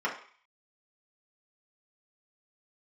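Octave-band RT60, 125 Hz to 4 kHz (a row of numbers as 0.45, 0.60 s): 0.25, 0.35, 0.40, 0.50, 0.55, 0.55 s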